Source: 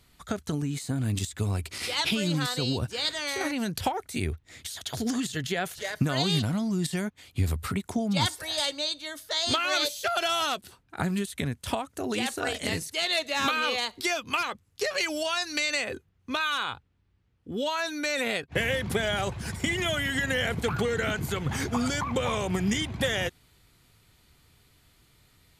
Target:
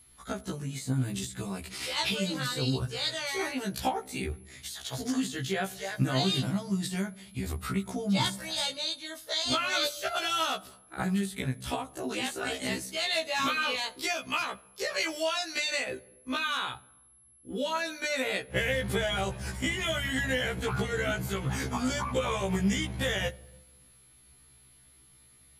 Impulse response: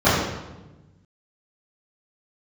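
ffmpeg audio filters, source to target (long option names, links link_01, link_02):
-filter_complex "[0:a]aeval=exprs='val(0)+0.00398*sin(2*PI*11000*n/s)':channel_layout=same,asplit=2[link_01][link_02];[1:a]atrim=start_sample=2205,adelay=23[link_03];[link_02][link_03]afir=irnorm=-1:irlink=0,volume=-44.5dB[link_04];[link_01][link_04]amix=inputs=2:normalize=0,afftfilt=real='re*1.73*eq(mod(b,3),0)':imag='im*1.73*eq(mod(b,3),0)':win_size=2048:overlap=0.75"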